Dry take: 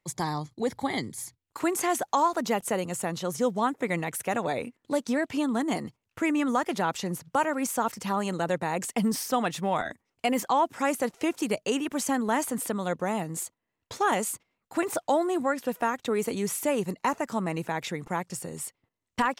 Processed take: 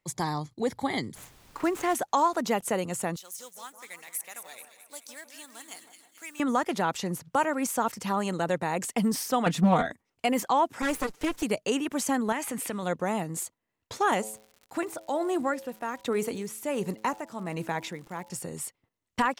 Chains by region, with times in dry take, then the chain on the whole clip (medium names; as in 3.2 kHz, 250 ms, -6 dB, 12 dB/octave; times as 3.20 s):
1.14–1.94 s: median filter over 9 samples + added noise pink -56 dBFS
3.16–6.40 s: companding laws mixed up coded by A + differentiator + two-band feedback delay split 1.8 kHz, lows 159 ms, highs 218 ms, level -9.5 dB
9.46–9.86 s: peaking EQ 120 Hz +10.5 dB 2.7 oct + comb 4.3 ms, depth 68% + loudspeaker Doppler distortion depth 0.43 ms
10.82–11.43 s: comb filter that takes the minimum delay 6.7 ms + peaking EQ 680 Hz -5 dB 0.34 oct
12.32–12.83 s: peaking EQ 2.4 kHz +9 dB 0.88 oct + de-hum 413.7 Hz, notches 28 + compression 2.5:1, threshold -30 dBFS
14.21–18.36 s: tremolo 1.3 Hz, depth 63% + de-hum 108.1 Hz, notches 9 + crackle 160 per s -42 dBFS
whole clip: none